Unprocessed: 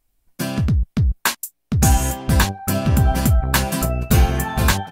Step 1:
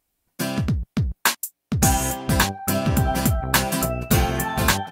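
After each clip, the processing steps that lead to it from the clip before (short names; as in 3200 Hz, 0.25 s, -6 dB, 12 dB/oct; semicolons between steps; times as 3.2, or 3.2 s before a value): HPF 160 Hz 6 dB/oct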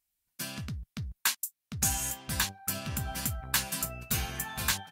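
passive tone stack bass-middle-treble 5-5-5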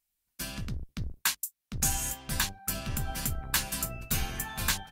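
octaver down 2 oct, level 0 dB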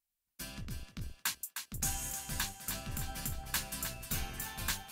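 thinning echo 0.308 s, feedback 48%, high-pass 480 Hz, level -7 dB; gain -7 dB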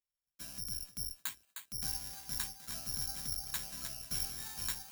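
careless resampling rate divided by 8×, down filtered, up zero stuff; gain -8 dB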